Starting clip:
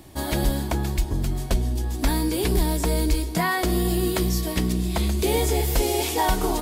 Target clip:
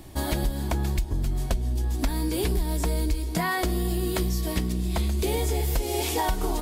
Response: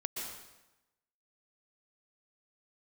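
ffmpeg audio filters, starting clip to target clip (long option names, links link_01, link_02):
-af "lowshelf=frequency=65:gain=8,acompressor=threshold=-22dB:ratio=6"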